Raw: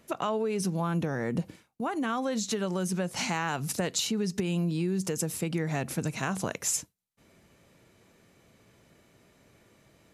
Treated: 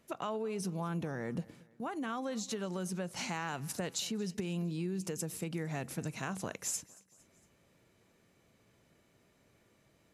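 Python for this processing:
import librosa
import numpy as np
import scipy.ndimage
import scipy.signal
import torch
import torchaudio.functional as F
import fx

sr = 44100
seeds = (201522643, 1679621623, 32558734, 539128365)

y = fx.echo_feedback(x, sr, ms=229, feedback_pct=51, wet_db=-22.5)
y = y * librosa.db_to_amplitude(-7.5)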